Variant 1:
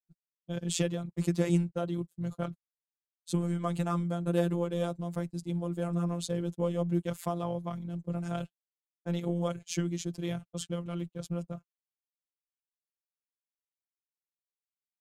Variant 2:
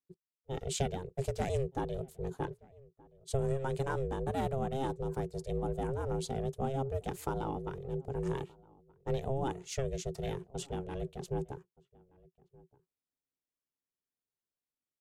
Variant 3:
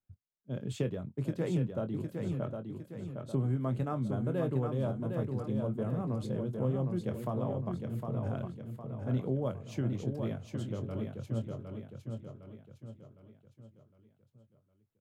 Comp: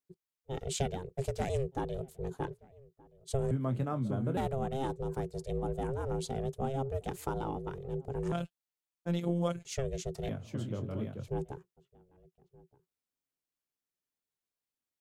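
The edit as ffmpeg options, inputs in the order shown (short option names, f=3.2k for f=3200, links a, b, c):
-filter_complex "[2:a]asplit=2[a][b];[1:a]asplit=4[c][d][e][f];[c]atrim=end=3.512[g];[a]atrim=start=3.508:end=4.372[h];[d]atrim=start=4.368:end=8.322[i];[0:a]atrim=start=8.318:end=9.652[j];[e]atrim=start=9.648:end=10.292[k];[b]atrim=start=10.288:end=11.282[l];[f]atrim=start=11.278[m];[g][h]acrossfade=d=0.004:c1=hsin:c2=hsin[n];[n][i]acrossfade=d=0.004:c1=hsin:c2=hsin[o];[o][j]acrossfade=d=0.004:c1=hsin:c2=hsin[p];[p][k]acrossfade=d=0.004:c1=hsin:c2=hsin[q];[q][l]acrossfade=d=0.004:c1=hsin:c2=hsin[r];[r][m]acrossfade=d=0.004:c1=hsin:c2=hsin"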